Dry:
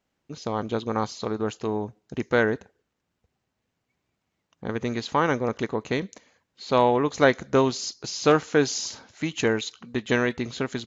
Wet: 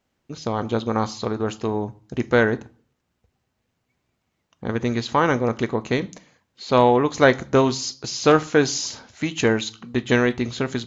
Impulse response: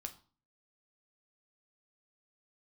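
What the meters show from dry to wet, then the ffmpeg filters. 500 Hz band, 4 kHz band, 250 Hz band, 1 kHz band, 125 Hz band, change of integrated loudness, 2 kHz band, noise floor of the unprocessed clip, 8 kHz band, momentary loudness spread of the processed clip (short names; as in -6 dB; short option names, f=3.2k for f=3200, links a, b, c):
+3.5 dB, +3.5 dB, +4.5 dB, +3.5 dB, +5.5 dB, +4.0 dB, +3.5 dB, -80 dBFS, n/a, 13 LU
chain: -filter_complex "[0:a]asplit=2[a][b];[1:a]atrim=start_sample=2205,lowshelf=f=150:g=5.5[c];[b][c]afir=irnorm=-1:irlink=0,volume=0.5dB[d];[a][d]amix=inputs=2:normalize=0,volume=-1dB"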